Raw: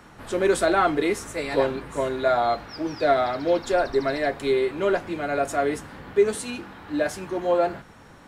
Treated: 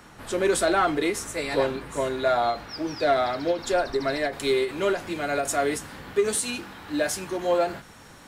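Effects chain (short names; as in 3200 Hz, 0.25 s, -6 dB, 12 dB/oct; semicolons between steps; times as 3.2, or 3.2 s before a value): high shelf 3100 Hz +6 dB, from 4.33 s +11.5 dB; soft clip -10 dBFS, distortion -23 dB; ending taper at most 190 dB/s; gain -1 dB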